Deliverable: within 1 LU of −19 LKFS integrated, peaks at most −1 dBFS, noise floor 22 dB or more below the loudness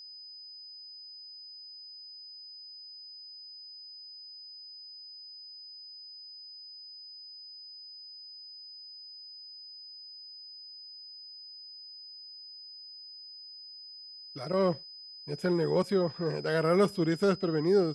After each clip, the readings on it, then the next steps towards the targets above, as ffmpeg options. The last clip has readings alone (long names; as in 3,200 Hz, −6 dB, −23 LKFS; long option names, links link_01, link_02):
interfering tone 5,000 Hz; level of the tone −45 dBFS; integrated loudness −35.5 LKFS; sample peak −12.5 dBFS; target loudness −19.0 LKFS
→ -af "bandreject=frequency=5000:width=30"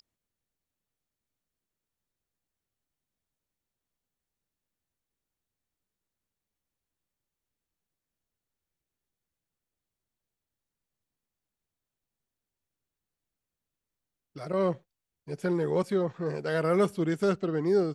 interfering tone none found; integrated loudness −28.5 LKFS; sample peak −12.5 dBFS; target loudness −19.0 LKFS
→ -af "volume=9.5dB"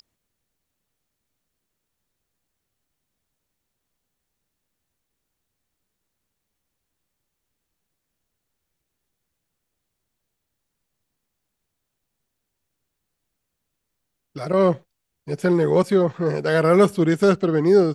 integrated loudness −19.0 LKFS; sample peak −3.0 dBFS; background noise floor −80 dBFS